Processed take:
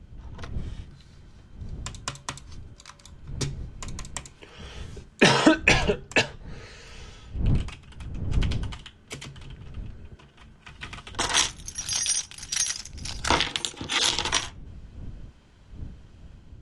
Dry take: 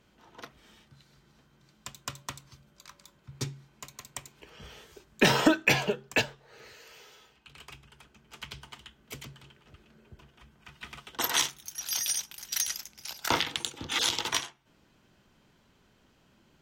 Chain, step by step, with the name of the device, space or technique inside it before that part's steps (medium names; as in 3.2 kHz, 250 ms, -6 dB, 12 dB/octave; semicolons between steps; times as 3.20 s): smartphone video outdoors (wind noise 93 Hz -40 dBFS; level rider gain up to 5 dB; AAC 96 kbps 24 kHz)